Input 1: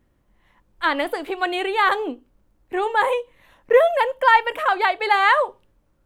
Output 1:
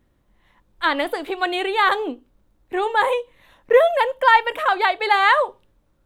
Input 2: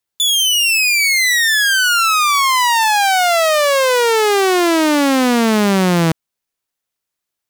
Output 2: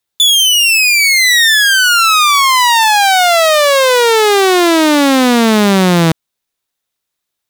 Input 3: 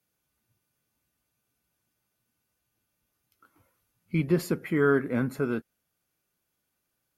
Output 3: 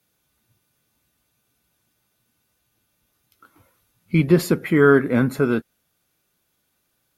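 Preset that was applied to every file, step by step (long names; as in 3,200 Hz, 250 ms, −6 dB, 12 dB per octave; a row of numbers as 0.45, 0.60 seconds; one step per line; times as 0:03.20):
parametric band 3,700 Hz +5 dB 0.25 octaves
normalise the peak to −3 dBFS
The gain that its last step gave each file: +0.5, +4.0, +8.5 decibels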